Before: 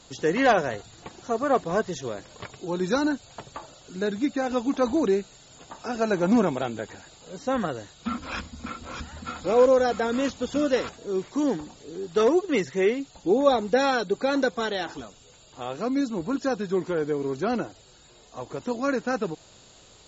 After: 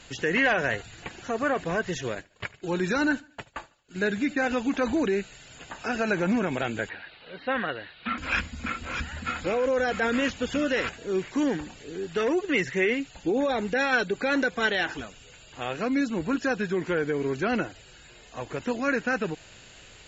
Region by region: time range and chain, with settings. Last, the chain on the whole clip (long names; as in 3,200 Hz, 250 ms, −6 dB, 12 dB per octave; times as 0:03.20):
0:02.15–0:04.48: downward expander −37 dBFS + repeating echo 75 ms, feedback 39%, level −23 dB
0:06.89–0:08.18: elliptic low-pass filter 4,200 Hz + low-shelf EQ 210 Hz −12 dB
whole clip: low-shelf EQ 98 Hz +6.5 dB; brickwall limiter −18.5 dBFS; flat-topped bell 2,100 Hz +10 dB 1.2 octaves